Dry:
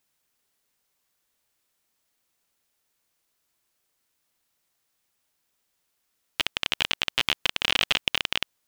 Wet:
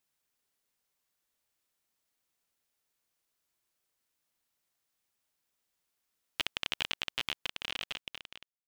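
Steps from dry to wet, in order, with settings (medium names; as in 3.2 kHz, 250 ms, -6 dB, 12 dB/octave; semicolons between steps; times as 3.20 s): fade out at the end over 2.18 s; trim -7 dB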